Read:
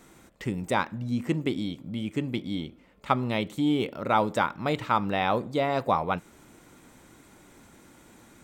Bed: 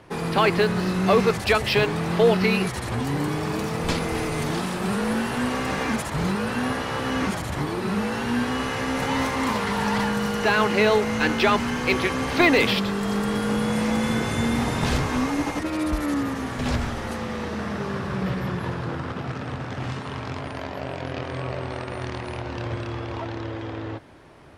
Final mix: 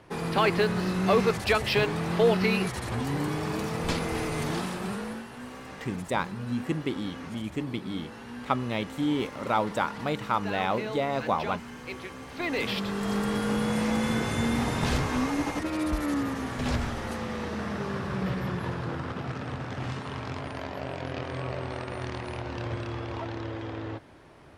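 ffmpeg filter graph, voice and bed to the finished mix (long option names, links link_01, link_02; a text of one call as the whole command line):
ffmpeg -i stem1.wav -i stem2.wav -filter_complex "[0:a]adelay=5400,volume=-2.5dB[link_01];[1:a]volume=9dB,afade=type=out:start_time=4.58:duration=0.68:silence=0.237137,afade=type=in:start_time=12.38:duration=0.73:silence=0.223872[link_02];[link_01][link_02]amix=inputs=2:normalize=0" out.wav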